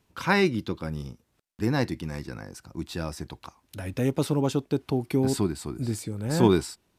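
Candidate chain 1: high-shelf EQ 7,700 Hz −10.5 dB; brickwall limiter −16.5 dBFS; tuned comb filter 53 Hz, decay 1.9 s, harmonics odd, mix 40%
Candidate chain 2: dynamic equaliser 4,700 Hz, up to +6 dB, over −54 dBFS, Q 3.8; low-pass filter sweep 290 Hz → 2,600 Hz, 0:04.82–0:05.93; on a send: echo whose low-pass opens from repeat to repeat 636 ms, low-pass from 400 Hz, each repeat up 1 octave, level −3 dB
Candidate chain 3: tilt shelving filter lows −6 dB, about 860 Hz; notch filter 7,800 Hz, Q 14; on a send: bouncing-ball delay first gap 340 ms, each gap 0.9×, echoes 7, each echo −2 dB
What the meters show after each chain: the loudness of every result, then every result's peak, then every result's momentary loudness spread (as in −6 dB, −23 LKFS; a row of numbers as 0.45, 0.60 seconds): −34.0, −24.0, −26.5 LKFS; −20.0, −5.0, −7.0 dBFS; 13, 8, 9 LU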